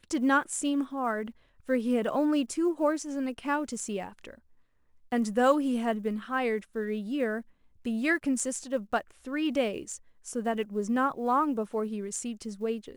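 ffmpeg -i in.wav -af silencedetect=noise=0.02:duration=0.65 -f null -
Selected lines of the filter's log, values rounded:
silence_start: 4.30
silence_end: 5.12 | silence_duration: 0.82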